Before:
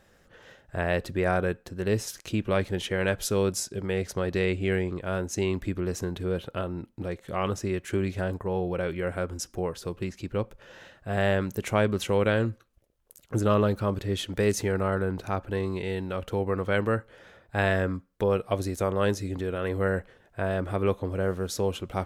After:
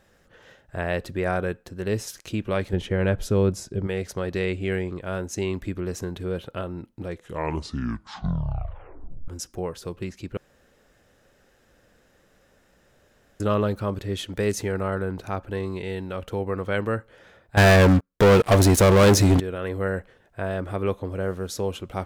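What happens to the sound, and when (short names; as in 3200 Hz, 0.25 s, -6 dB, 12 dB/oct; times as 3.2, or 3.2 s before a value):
2.73–3.87 tilt -2.5 dB/oct
7.08 tape stop 2.20 s
10.37–13.4 room tone
17.57–19.4 sample leveller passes 5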